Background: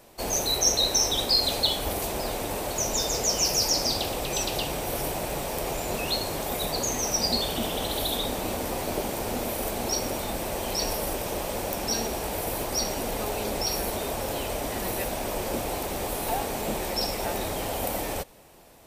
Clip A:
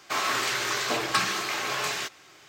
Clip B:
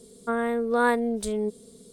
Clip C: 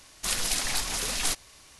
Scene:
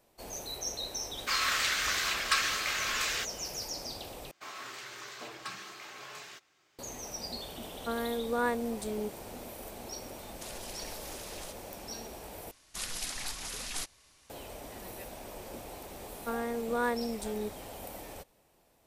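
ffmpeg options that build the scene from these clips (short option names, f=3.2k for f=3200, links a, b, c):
-filter_complex "[1:a]asplit=2[a][b];[2:a]asplit=2[c][d];[3:a]asplit=2[e][f];[0:a]volume=-14.5dB[g];[a]highpass=f=1.2k:w=0.5412,highpass=f=1.2k:w=1.3066[h];[e]acompressor=threshold=-39dB:ratio=5:attack=10:release=106:knee=1:detection=peak[i];[g]asplit=3[j][k][l];[j]atrim=end=4.314[m];[b]atrim=end=2.48,asetpts=PTS-STARTPTS,volume=-17dB[n];[k]atrim=start=6.786:end=12.514[o];[f]atrim=end=1.79,asetpts=PTS-STARTPTS,volume=-9.5dB[p];[l]atrim=start=14.296[q];[h]atrim=end=2.48,asetpts=PTS-STARTPTS,volume=-1.5dB,afade=t=in:d=0.004:c=hsin,afade=t=out:st=2.476:d=0.004:c=hsin,adelay=1170[r];[c]atrim=end=1.92,asetpts=PTS-STARTPTS,volume=-8dB,afade=t=in:d=0.004:c=hsin,afade=t=out:st=1.916:d=0.004:c=hsin,adelay=7590[s];[i]atrim=end=1.79,asetpts=PTS-STARTPTS,volume=-6.5dB,afade=t=in:d=0.004:c=hsin,afade=t=out:st=1.786:d=0.004:c=hsin,adelay=448938S[t];[d]atrim=end=1.92,asetpts=PTS-STARTPTS,volume=-8.5dB,afade=t=in:d=0.004:c=hsin,afade=t=out:st=1.916:d=0.004:c=hsin,adelay=15990[u];[m][n]acrossfade=d=0.004:c1=hsin:c2=hsin[v];[v][o]acrossfade=d=0.004:c1=hsin:c2=hsin[w];[w][p]acrossfade=d=0.004:c1=hsin:c2=hsin[x];[x][q]acrossfade=d=0.004:c1=hsin:c2=hsin[y];[y][r][s][t][u]amix=inputs=5:normalize=0"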